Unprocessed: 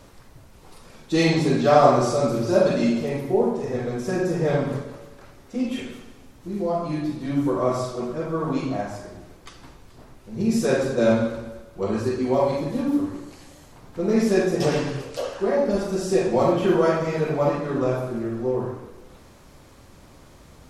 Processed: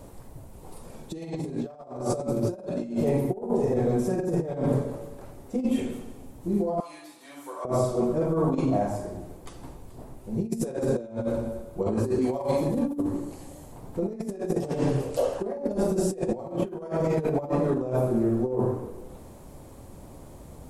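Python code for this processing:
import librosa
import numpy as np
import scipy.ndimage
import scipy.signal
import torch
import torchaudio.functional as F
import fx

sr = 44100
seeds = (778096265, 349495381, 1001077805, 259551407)

y = fx.highpass(x, sr, hz=1400.0, slope=12, at=(6.8, 7.65))
y = fx.tilt_shelf(y, sr, db=-4.5, hz=970.0, at=(12.21, 12.68))
y = fx.band_shelf(y, sr, hz=2700.0, db=-10.5, octaves=2.7)
y = fx.over_compress(y, sr, threshold_db=-26.0, ratio=-0.5)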